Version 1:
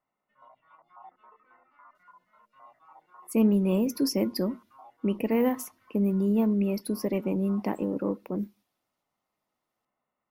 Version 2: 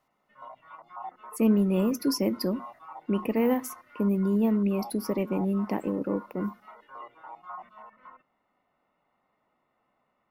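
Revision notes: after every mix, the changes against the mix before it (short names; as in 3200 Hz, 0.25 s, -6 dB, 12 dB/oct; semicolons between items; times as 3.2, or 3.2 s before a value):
speech: entry -1.95 s; background +10.5 dB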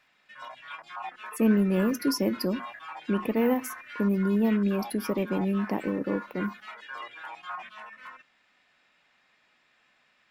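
background: remove polynomial smoothing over 65 samples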